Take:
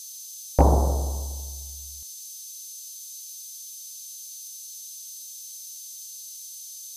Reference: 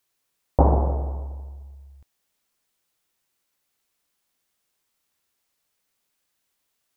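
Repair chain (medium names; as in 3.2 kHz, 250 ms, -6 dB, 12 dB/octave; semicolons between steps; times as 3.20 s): clip repair -4 dBFS; band-stop 6.2 kHz, Q 30; noise print and reduce 30 dB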